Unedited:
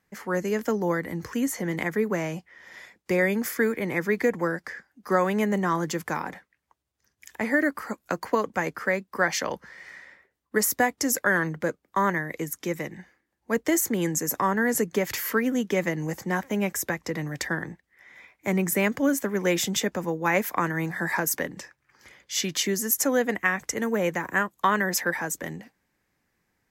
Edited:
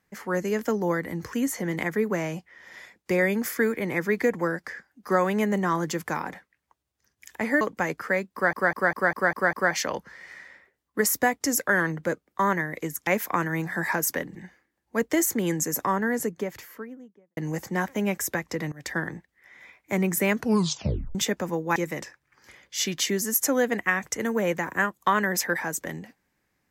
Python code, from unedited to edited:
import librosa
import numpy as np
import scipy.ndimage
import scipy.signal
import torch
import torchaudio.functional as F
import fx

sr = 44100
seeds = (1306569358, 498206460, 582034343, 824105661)

y = fx.studio_fade_out(x, sr, start_s=14.19, length_s=1.73)
y = fx.edit(y, sr, fx.cut(start_s=7.61, length_s=0.77),
    fx.stutter(start_s=9.1, slice_s=0.2, count=7),
    fx.swap(start_s=12.64, length_s=0.26, other_s=20.31, other_length_s=1.28),
    fx.fade_in_from(start_s=17.27, length_s=0.25, floor_db=-21.0),
    fx.tape_stop(start_s=18.89, length_s=0.81), tone=tone)